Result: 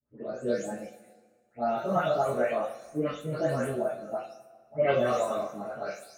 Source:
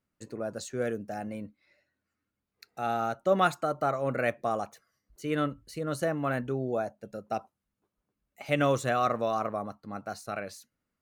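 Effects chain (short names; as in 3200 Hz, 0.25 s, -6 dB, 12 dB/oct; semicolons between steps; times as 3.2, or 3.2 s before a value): spectral delay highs late, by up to 0.543 s; bell 570 Hz +8 dB 1 oct; plain phase-vocoder stretch 0.56×; two-slope reverb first 0.31 s, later 1.6 s, from -19 dB, DRR -7 dB; gain -5.5 dB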